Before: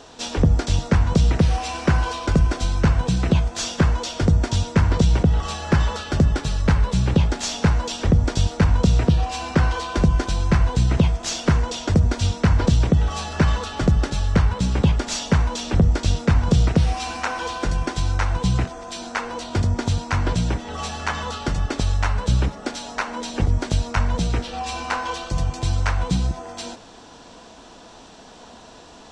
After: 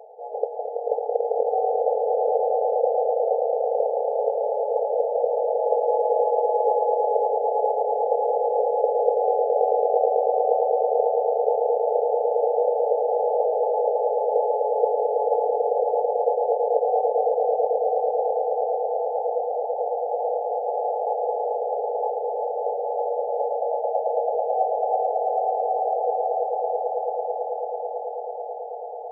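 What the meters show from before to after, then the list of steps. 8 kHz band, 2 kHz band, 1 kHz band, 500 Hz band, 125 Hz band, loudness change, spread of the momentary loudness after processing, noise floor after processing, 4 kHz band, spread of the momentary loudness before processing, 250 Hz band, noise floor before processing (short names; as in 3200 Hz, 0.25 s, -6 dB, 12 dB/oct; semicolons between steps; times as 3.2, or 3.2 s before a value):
under -40 dB, under -40 dB, +6.5 dB, +10.5 dB, under -40 dB, -1.5 dB, 5 LU, -32 dBFS, under -40 dB, 8 LU, under -30 dB, -45 dBFS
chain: rattling part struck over -25 dBFS, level -11 dBFS; FFT band-pass 420–880 Hz; swelling echo 0.11 s, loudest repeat 8, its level -5 dB; gain +4 dB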